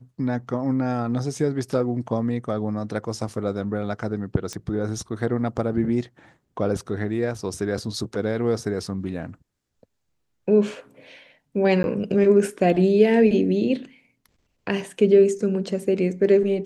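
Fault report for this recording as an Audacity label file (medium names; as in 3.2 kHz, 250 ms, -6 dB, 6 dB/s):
4.530000	4.530000	pop -17 dBFS
11.830000	11.840000	dropout 11 ms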